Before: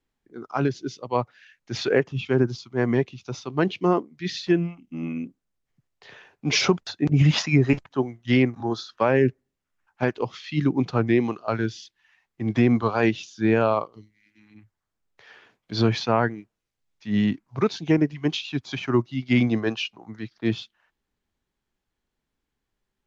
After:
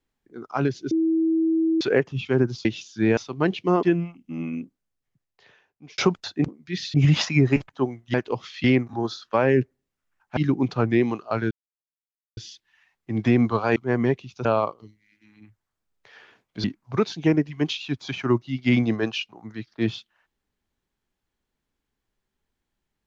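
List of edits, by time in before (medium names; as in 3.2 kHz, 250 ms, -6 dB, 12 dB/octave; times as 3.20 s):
0.91–1.81 s: bleep 324 Hz -18 dBFS
2.65–3.34 s: swap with 13.07–13.59 s
4.00–4.46 s: move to 7.11 s
5.21–6.61 s: fade out
10.04–10.54 s: move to 8.31 s
11.68 s: insert silence 0.86 s
15.78–17.28 s: delete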